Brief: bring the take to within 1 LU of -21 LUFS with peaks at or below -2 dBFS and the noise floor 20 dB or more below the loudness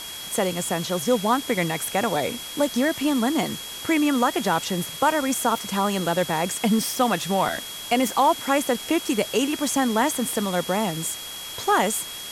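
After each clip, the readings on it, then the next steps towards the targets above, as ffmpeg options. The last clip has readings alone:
steady tone 3.3 kHz; tone level -36 dBFS; noise floor -36 dBFS; noise floor target -44 dBFS; loudness -23.5 LUFS; peak level -7.5 dBFS; loudness target -21.0 LUFS
-> -af "bandreject=f=3300:w=30"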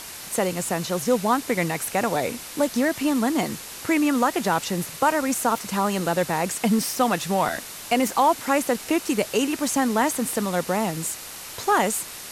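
steady tone not found; noise floor -38 dBFS; noise floor target -44 dBFS
-> -af "afftdn=nr=6:nf=-38"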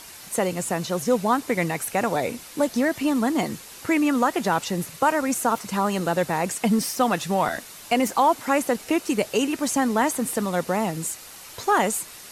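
noise floor -43 dBFS; noise floor target -44 dBFS
-> -af "afftdn=nr=6:nf=-43"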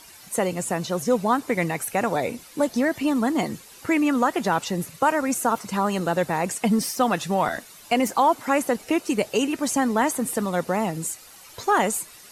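noise floor -47 dBFS; loudness -24.0 LUFS; peak level -8.5 dBFS; loudness target -21.0 LUFS
-> -af "volume=1.41"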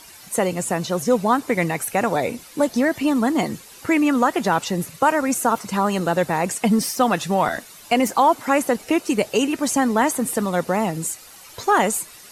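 loudness -21.0 LUFS; peak level -5.5 dBFS; noise floor -44 dBFS

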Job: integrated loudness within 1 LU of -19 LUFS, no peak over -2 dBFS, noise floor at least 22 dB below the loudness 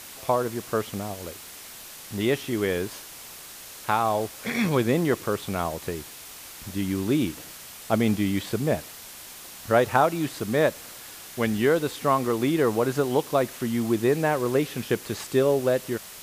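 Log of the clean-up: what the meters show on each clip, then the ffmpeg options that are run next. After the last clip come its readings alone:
noise floor -43 dBFS; noise floor target -48 dBFS; loudness -25.5 LUFS; peak level -5.0 dBFS; loudness target -19.0 LUFS
-> -af "afftdn=nr=6:nf=-43"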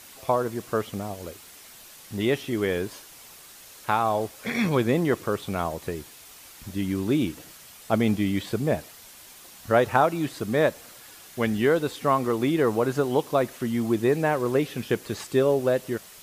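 noise floor -48 dBFS; loudness -25.5 LUFS; peak level -5.0 dBFS; loudness target -19.0 LUFS
-> -af "volume=2.11,alimiter=limit=0.794:level=0:latency=1"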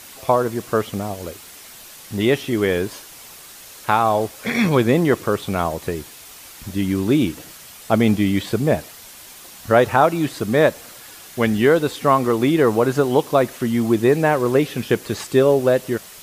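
loudness -19.0 LUFS; peak level -2.0 dBFS; noise floor -41 dBFS

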